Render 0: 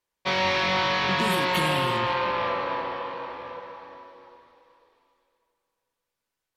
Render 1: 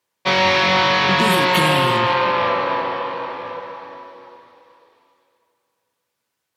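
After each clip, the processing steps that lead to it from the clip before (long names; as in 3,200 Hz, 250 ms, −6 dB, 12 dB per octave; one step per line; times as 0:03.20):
high-pass filter 87 Hz 24 dB per octave
level +8 dB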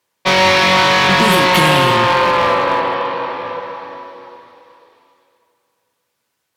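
asymmetric clip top −15.5 dBFS
level +5.5 dB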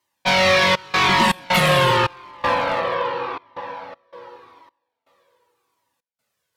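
gate pattern "xxxx.xx.xxx..x" 80 BPM −24 dB
flanger whose copies keep moving one way falling 0.86 Hz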